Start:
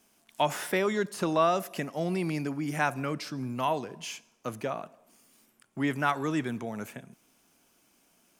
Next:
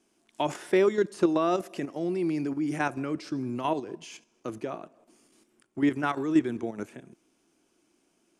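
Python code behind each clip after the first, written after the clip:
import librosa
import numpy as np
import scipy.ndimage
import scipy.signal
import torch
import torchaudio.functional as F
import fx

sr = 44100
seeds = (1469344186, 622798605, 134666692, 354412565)

y = fx.level_steps(x, sr, step_db=9)
y = scipy.signal.sosfilt(scipy.signal.butter(4, 10000.0, 'lowpass', fs=sr, output='sos'), y)
y = fx.peak_eq(y, sr, hz=340.0, db=13.0, octaves=0.61)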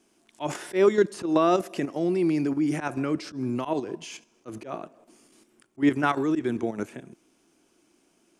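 y = fx.auto_swell(x, sr, attack_ms=114.0)
y = y * librosa.db_to_amplitude(4.5)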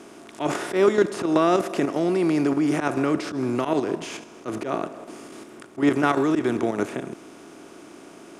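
y = fx.bin_compress(x, sr, power=0.6)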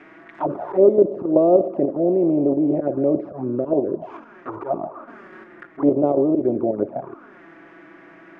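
y = fx.env_flanger(x, sr, rest_ms=7.7, full_db=-18.0)
y = fx.notch(y, sr, hz=460.0, q=12.0)
y = fx.envelope_lowpass(y, sr, base_hz=560.0, top_hz=2200.0, q=4.7, full_db=-25.5, direction='down')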